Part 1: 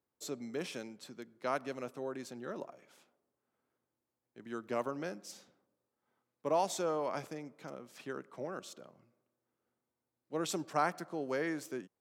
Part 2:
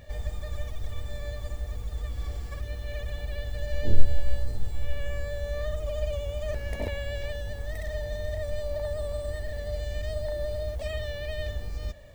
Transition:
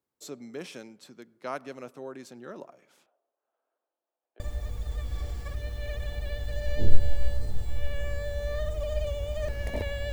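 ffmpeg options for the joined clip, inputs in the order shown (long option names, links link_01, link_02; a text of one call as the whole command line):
ffmpeg -i cue0.wav -i cue1.wav -filter_complex "[0:a]asettb=1/sr,asplit=3[link_01][link_02][link_03];[link_01]atrim=end=3.064[link_04];[link_02]atrim=start=3.06:end=4.4,asetpts=PTS-STARTPTS,afade=type=in:duration=0.004:curve=qsin,afade=type=out:start_time=1.336:duration=0.004:curve=qsin,highpass=frequency=380:width=0.5412,highpass=frequency=380:width=1.3066,equalizer=frequency=390:width_type=q:width=4:gain=-4,equalizer=frequency=670:width_type=q:width=4:gain=10,equalizer=frequency=2100:width_type=q:width=4:gain=-9,lowpass=frequency=3100:width=0.5412,lowpass=frequency=3100:width=1.3066[link_05];[link_03]atrim=start=4.396[link_06];[link_04][link_05]acrossfade=duration=0.004:curve1=hsin:curve2=qsin[link_07];[link_07][link_06]acrossfade=duration=0.004:curve1=qsin:curve2=hsin,apad=whole_dur=10.12,atrim=end=10.12,atrim=end=4.402[link_08];[1:a]atrim=start=1.458:end=7.18[link_09];[link_08][link_09]acrossfade=duration=0.004:curve1=hsin:curve2=hsin" out.wav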